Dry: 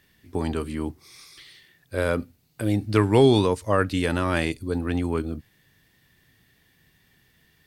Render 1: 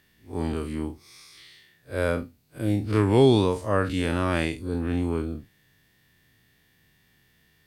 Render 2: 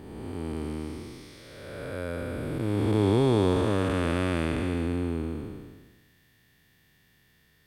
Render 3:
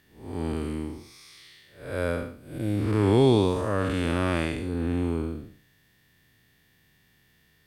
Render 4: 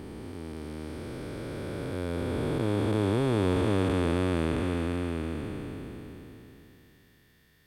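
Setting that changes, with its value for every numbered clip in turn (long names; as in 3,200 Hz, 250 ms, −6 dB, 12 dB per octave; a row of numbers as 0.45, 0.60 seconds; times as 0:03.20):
spectrum smeared in time, width: 89, 673, 238, 1,780 milliseconds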